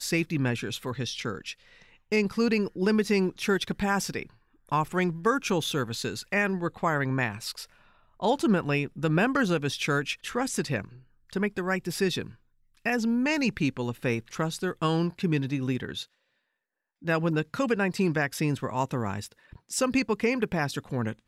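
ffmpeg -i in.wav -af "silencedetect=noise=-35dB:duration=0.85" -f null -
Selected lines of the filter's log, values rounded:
silence_start: 16.03
silence_end: 17.05 | silence_duration: 1.02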